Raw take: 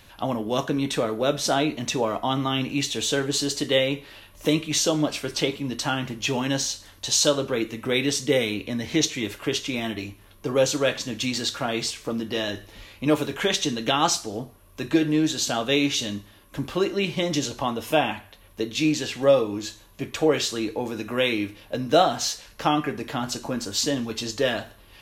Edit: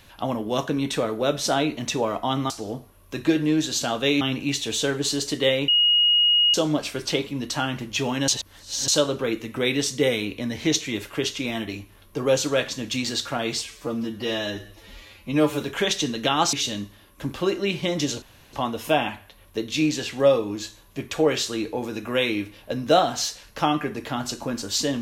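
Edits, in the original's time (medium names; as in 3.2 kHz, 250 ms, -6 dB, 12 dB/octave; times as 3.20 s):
3.97–4.83 s: bleep 2.88 kHz -15 dBFS
6.57–7.17 s: reverse
11.93–13.25 s: stretch 1.5×
14.16–15.87 s: move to 2.50 s
17.56 s: insert room tone 0.31 s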